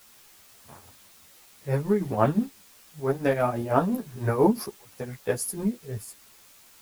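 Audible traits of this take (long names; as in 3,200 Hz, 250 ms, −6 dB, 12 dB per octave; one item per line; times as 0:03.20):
tremolo triangle 5.9 Hz, depth 80%
a quantiser's noise floor 10 bits, dither triangular
a shimmering, thickened sound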